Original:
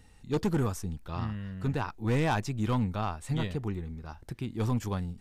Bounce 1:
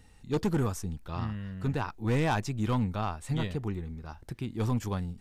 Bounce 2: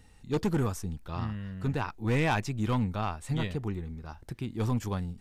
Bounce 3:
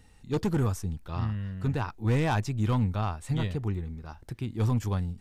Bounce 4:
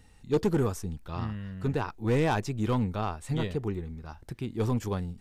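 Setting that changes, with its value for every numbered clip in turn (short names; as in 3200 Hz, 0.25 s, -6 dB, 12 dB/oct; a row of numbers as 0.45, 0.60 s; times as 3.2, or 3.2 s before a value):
dynamic EQ, frequency: 6900, 2300, 100, 420 Hz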